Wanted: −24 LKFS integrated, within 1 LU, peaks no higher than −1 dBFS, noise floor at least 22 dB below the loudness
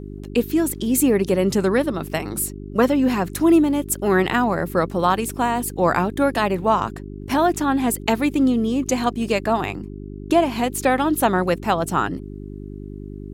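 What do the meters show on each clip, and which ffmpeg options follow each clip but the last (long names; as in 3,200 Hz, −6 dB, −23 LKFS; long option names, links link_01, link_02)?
mains hum 50 Hz; hum harmonics up to 400 Hz; level of the hum −33 dBFS; integrated loudness −20.5 LKFS; sample peak −5.0 dBFS; target loudness −24.0 LKFS
→ -af "bandreject=frequency=50:width_type=h:width=4,bandreject=frequency=100:width_type=h:width=4,bandreject=frequency=150:width_type=h:width=4,bandreject=frequency=200:width_type=h:width=4,bandreject=frequency=250:width_type=h:width=4,bandreject=frequency=300:width_type=h:width=4,bandreject=frequency=350:width_type=h:width=4,bandreject=frequency=400:width_type=h:width=4"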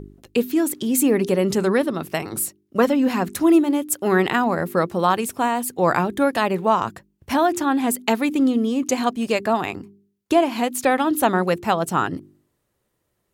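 mains hum none found; integrated loudness −21.0 LKFS; sample peak −5.0 dBFS; target loudness −24.0 LKFS
→ -af "volume=-3dB"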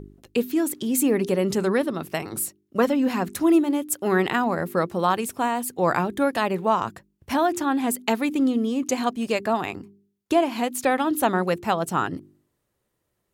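integrated loudness −24.0 LKFS; sample peak −8.0 dBFS; background noise floor −76 dBFS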